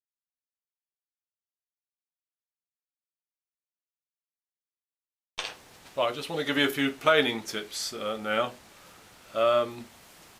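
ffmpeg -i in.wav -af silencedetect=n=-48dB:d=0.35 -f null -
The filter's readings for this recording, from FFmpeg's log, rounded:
silence_start: 0.00
silence_end: 5.38 | silence_duration: 5.38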